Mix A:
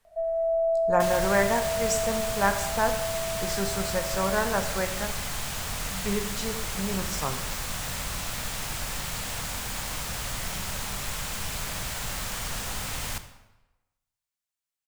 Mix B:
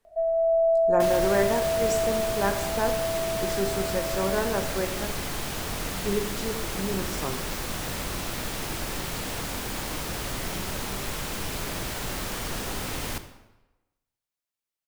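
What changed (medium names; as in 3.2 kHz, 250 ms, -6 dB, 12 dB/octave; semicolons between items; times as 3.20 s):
speech -5.5 dB; second sound: add peaking EQ 7.5 kHz -3.5 dB 0.53 oct; master: add peaking EQ 340 Hz +12.5 dB 1.1 oct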